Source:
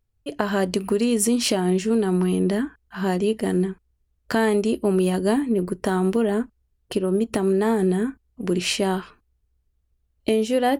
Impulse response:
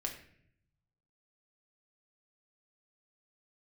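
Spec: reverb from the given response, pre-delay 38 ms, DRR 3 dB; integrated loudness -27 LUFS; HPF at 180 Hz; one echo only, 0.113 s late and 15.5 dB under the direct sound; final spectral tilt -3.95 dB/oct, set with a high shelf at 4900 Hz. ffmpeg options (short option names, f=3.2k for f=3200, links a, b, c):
-filter_complex "[0:a]highpass=180,highshelf=f=4.9k:g=8.5,aecho=1:1:113:0.168,asplit=2[a][b];[1:a]atrim=start_sample=2205,adelay=38[c];[b][c]afir=irnorm=-1:irlink=0,volume=-3.5dB[d];[a][d]amix=inputs=2:normalize=0,volume=-6dB"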